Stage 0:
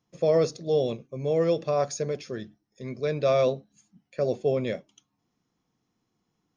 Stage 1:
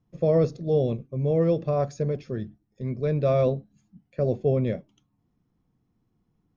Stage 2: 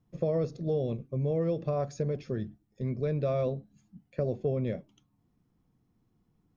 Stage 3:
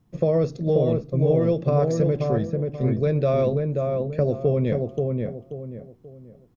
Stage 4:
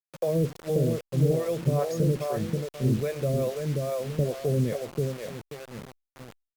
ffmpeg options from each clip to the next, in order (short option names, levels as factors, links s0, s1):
-af "aemphasis=mode=reproduction:type=riaa,volume=0.75"
-af "acompressor=threshold=0.0398:ratio=3"
-filter_complex "[0:a]asplit=2[s0][s1];[s1]adelay=533,lowpass=f=1400:p=1,volume=0.708,asplit=2[s2][s3];[s3]adelay=533,lowpass=f=1400:p=1,volume=0.34,asplit=2[s4][s5];[s5]adelay=533,lowpass=f=1400:p=1,volume=0.34,asplit=2[s6][s7];[s7]adelay=533,lowpass=f=1400:p=1,volume=0.34[s8];[s0][s2][s4][s6][s8]amix=inputs=5:normalize=0,volume=2.51"
-filter_complex "[0:a]acrossover=split=480[s0][s1];[s0]aeval=exprs='val(0)*(1-1/2+1/2*cos(2*PI*2.4*n/s))':c=same[s2];[s1]aeval=exprs='val(0)*(1-1/2-1/2*cos(2*PI*2.4*n/s))':c=same[s3];[s2][s3]amix=inputs=2:normalize=0,acrusher=bits=6:mix=0:aa=0.000001" -ar 48000 -c:a libopus -b:a 256k